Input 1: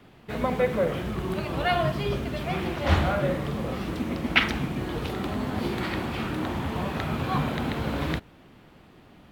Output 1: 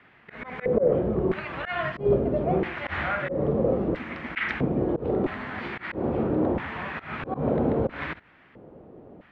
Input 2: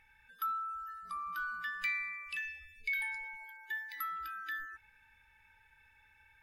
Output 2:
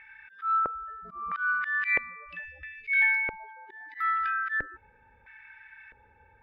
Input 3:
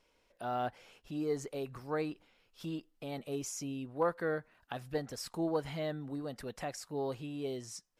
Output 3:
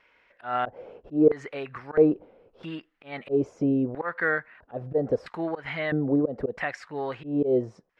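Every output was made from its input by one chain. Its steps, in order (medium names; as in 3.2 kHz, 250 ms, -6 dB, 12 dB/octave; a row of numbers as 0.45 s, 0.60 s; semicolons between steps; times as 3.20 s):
LFO band-pass square 0.76 Hz 500–1900 Hz; RIAA curve playback; slow attack 140 ms; normalise loudness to -27 LUFS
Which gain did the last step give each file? +10.0 dB, +20.5 dB, +21.0 dB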